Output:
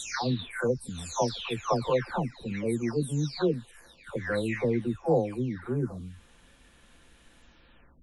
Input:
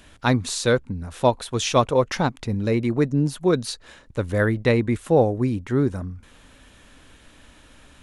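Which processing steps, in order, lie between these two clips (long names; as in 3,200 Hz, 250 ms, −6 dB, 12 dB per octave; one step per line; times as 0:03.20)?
every frequency bin delayed by itself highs early, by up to 612 ms
level −6 dB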